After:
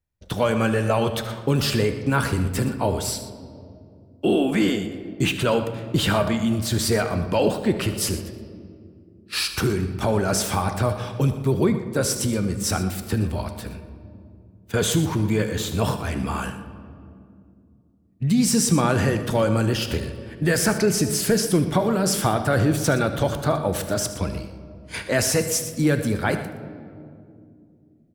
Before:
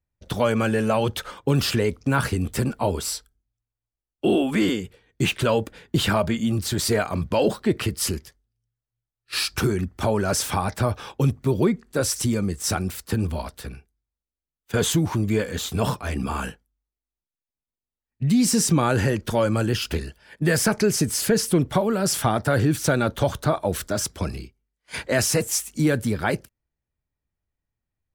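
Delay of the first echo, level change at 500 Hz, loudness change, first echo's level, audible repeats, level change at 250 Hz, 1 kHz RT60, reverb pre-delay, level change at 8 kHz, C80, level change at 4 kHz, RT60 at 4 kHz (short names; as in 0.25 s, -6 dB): 75 ms, +1.0 dB, +0.5 dB, -15.5 dB, 2, +1.0 dB, 2.0 s, 6 ms, +0.5 dB, 10.5 dB, +0.5 dB, 1.3 s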